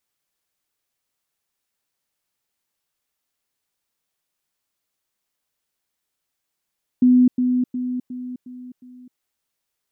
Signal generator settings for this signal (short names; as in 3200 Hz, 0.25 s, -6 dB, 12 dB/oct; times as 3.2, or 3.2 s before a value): level ladder 250 Hz -10 dBFS, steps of -6 dB, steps 6, 0.26 s 0.10 s